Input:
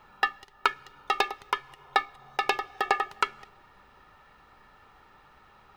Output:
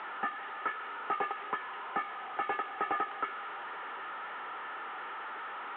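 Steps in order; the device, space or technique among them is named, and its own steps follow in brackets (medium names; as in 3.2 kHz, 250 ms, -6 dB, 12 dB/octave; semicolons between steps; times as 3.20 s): digital answering machine (band-pass 300–3100 Hz; one-bit delta coder 16 kbps, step -35.5 dBFS; cabinet simulation 400–3700 Hz, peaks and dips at 590 Hz -4 dB, 1.4 kHz +4 dB, 2.5 kHz -5 dB)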